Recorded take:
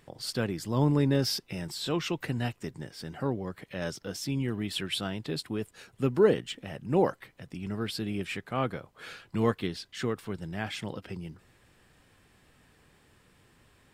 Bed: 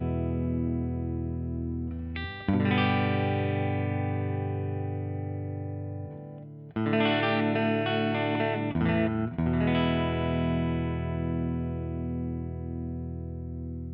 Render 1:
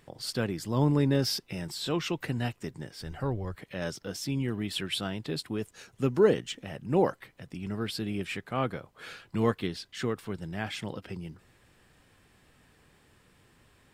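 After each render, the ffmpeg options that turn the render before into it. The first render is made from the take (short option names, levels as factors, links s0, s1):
-filter_complex "[0:a]asplit=3[s0][s1][s2];[s0]afade=t=out:st=3.01:d=0.02[s3];[s1]asubboost=boost=10:cutoff=72,afade=t=in:st=3.01:d=0.02,afade=t=out:st=3.56:d=0.02[s4];[s2]afade=t=in:st=3.56:d=0.02[s5];[s3][s4][s5]amix=inputs=3:normalize=0,asettb=1/sr,asplit=3[s6][s7][s8];[s6]atrim=end=5.584[s9];[s7]atrim=start=5.58:end=6.64,asetpts=PTS-STARTPTS,afade=t=in:d=0.004:c=qsin,afade=t=out:st=1.056:d=0.004:c=qsin,equalizer=f=6200:w=3.6:g=7[s10];[s8]atrim=start=6.636[s11];[s9][s10]acrossfade=d=0.004:c1=hsin:c2=qsin[s12];[s12][s11]acrossfade=d=0.004:c1=qsin:c2=hsin"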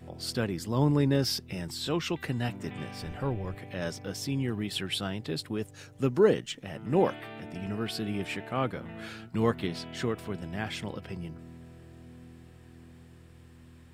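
-filter_complex "[1:a]volume=0.133[s0];[0:a][s0]amix=inputs=2:normalize=0"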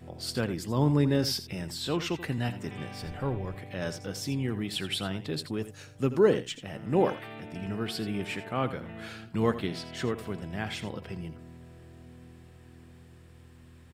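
-af "aecho=1:1:83:0.224"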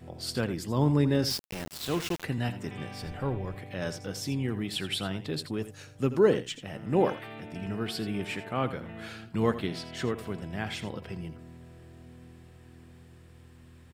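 -filter_complex "[0:a]asettb=1/sr,asplit=3[s0][s1][s2];[s0]atrim=end=1.304[s3];[s1]atrim=start=1.3:end=2.24,asetpts=PTS-STARTPTS,afade=t=in:d=0.004:c=qsin,afade=t=out:st=0.936:d=0.004:c=qsin,aeval=exprs='val(0)*gte(abs(val(0)),0.0224)':c=same[s4];[s2]atrim=start=2.236[s5];[s3][s4]acrossfade=d=0.004:c1=hsin:c2=qsin[s6];[s6][s5]acrossfade=d=0.004:c1=qsin:c2=hsin"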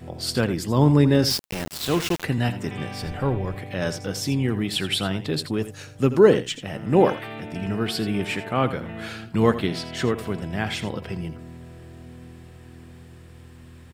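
-af "volume=2.37"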